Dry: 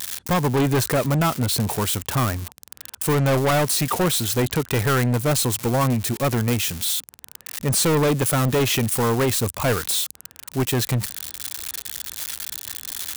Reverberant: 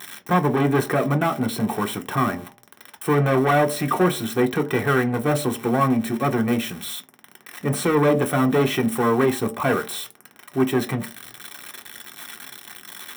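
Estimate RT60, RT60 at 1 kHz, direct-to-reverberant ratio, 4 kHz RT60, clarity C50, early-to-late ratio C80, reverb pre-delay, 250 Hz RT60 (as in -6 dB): 0.45 s, 0.50 s, 2.5 dB, 0.15 s, 17.5 dB, 21.5 dB, 3 ms, 0.35 s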